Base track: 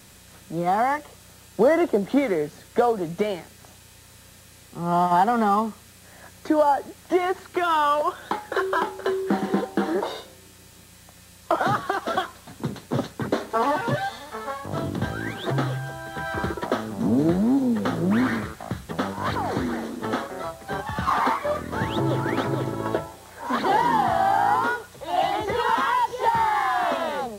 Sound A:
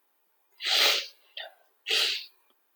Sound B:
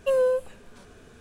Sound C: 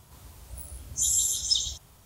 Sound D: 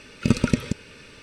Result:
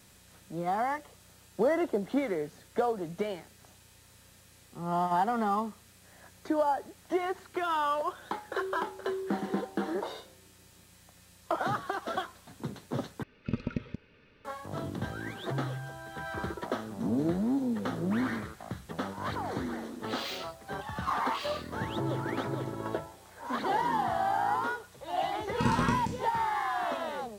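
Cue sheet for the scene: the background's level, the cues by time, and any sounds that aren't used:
base track -8.5 dB
13.23 replace with D -12.5 dB + air absorption 280 m
19.44 add A -16.5 dB
25.35 add D -12 dB + spectral trails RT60 0.53 s
not used: B, C

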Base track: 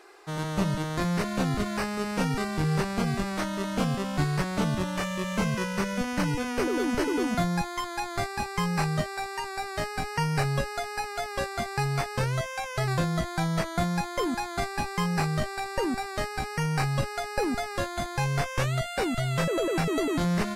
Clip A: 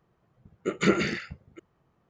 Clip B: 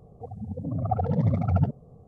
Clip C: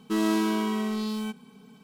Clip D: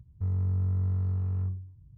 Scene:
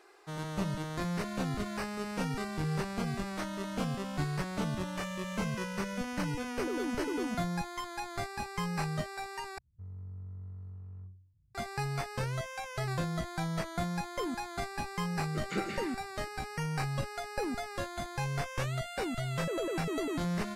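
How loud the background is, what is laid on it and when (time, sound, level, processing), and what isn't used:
base track -7 dB
9.58 replace with D -16.5 dB
14.69 add A -12.5 dB
not used: B, C

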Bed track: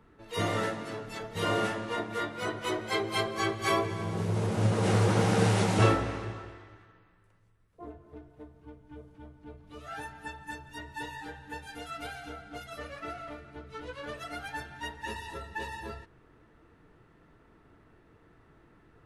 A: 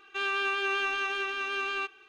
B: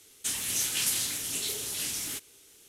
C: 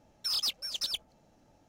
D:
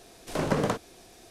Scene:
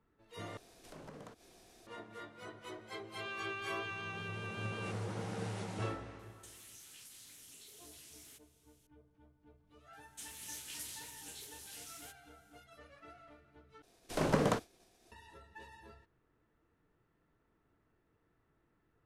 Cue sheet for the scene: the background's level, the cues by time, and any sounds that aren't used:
bed track -16 dB
0.57 replace with D -9 dB + compressor 2.5:1, threshold -47 dBFS
3.05 add A -13.5 dB
6.19 add B -16.5 dB + compressor 5:1, threshold -36 dBFS
9.93 add B -17.5 dB
13.82 replace with D -4 dB + expander -45 dBFS
not used: C

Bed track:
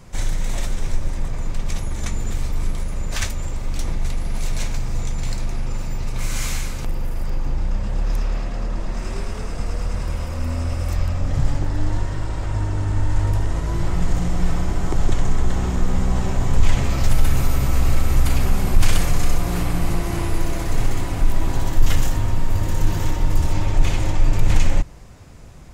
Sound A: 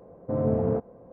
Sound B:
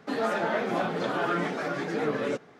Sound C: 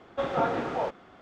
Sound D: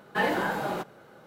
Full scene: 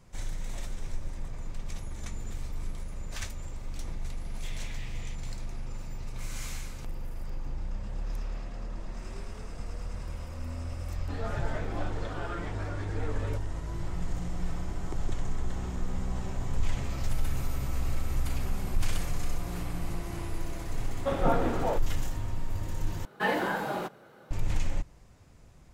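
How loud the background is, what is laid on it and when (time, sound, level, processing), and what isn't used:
bed track -13 dB
4.25 add C -3 dB + steep high-pass 1900 Hz 72 dB/oct
11.01 add B -10.5 dB
20.88 add C -3 dB + low shelf 370 Hz +8.5 dB
23.05 replace with D -2 dB
not used: A

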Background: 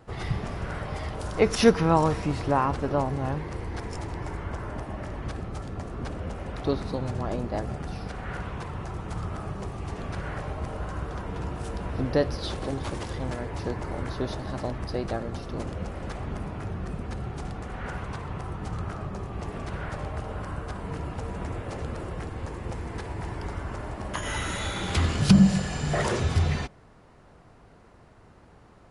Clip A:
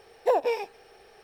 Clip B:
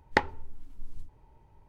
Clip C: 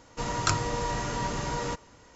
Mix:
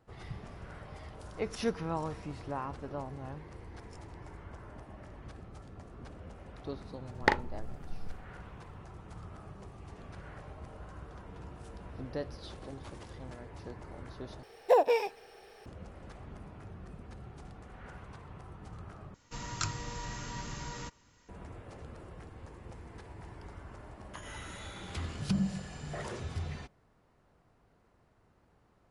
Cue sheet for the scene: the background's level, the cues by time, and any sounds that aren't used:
background -14 dB
7.11 add B -1.5 dB + doubler 40 ms -7 dB
14.43 replace with A -0.5 dB
19.14 replace with C -7 dB + bell 570 Hz -9 dB 1.8 oct

